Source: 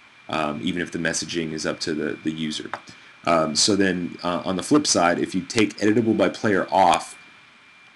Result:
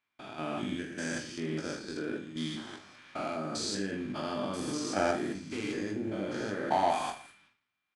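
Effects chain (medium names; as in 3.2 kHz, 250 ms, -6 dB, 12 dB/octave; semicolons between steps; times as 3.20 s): spectrogram pixelated in time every 200 ms; gate with hold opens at -40 dBFS; level held to a coarse grid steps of 10 dB; de-hum 57.75 Hz, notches 3; on a send: reverse bouncing-ball echo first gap 20 ms, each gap 1.25×, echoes 5; on the sum: trim -6.5 dB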